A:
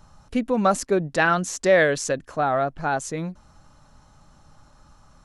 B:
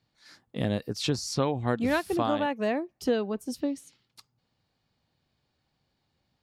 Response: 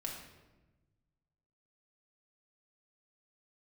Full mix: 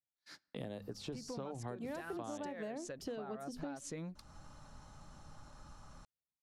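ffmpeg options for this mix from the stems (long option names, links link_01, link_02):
-filter_complex "[0:a]acompressor=threshold=-26dB:ratio=10,adelay=800,volume=-2dB[link_01];[1:a]bandreject=frequency=50:width_type=h:width=6,bandreject=frequency=100:width_type=h:width=6,bandreject=frequency=150:width_type=h:width=6,bandreject=frequency=200:width_type=h:width=6,bandreject=frequency=250:width_type=h:width=6,agate=range=-33dB:threshold=-52dB:ratio=16:detection=peak,acrossover=split=410|1000|7800[link_02][link_03][link_04][link_05];[link_02]acompressor=threshold=-34dB:ratio=4[link_06];[link_03]acompressor=threshold=-33dB:ratio=4[link_07];[link_04]acompressor=threshold=-46dB:ratio=4[link_08];[link_05]acompressor=threshold=-58dB:ratio=4[link_09];[link_06][link_07][link_08][link_09]amix=inputs=4:normalize=0,volume=0.5dB,asplit=3[link_10][link_11][link_12];[link_11]volume=-22dB[link_13];[link_12]apad=whole_len=266790[link_14];[link_01][link_14]sidechaincompress=threshold=-34dB:ratio=8:attack=9.1:release=475[link_15];[2:a]atrim=start_sample=2205[link_16];[link_13][link_16]afir=irnorm=-1:irlink=0[link_17];[link_15][link_10][link_17]amix=inputs=3:normalize=0,acompressor=threshold=-46dB:ratio=2.5"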